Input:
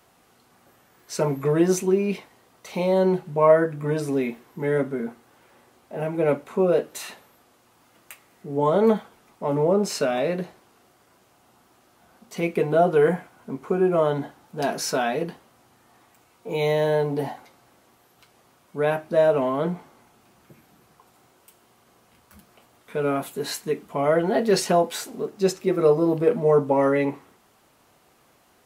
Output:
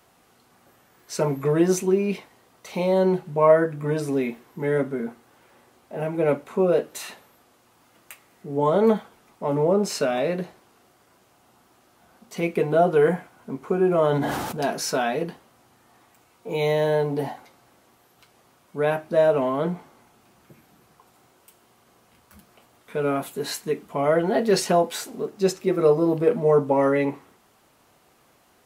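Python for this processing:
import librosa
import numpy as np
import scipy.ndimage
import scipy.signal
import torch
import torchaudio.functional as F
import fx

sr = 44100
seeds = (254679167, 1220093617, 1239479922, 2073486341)

y = fx.sustainer(x, sr, db_per_s=28.0, at=(13.86, 14.57))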